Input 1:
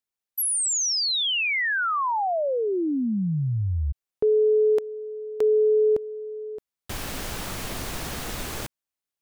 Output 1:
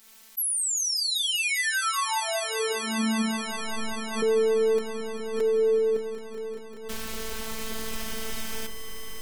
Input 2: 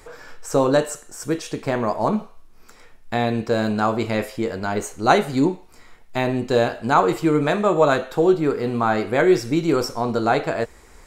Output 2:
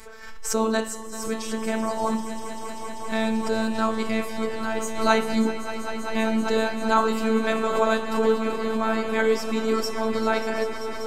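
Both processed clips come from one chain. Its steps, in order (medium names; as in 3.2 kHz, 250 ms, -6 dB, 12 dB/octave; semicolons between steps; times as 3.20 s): peaking EQ 570 Hz -5 dB 0.83 oct; de-hum 69.61 Hz, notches 18; robot voice 222 Hz; echo with a slow build-up 195 ms, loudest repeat 5, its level -13 dB; swell ahead of each attack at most 77 dB/s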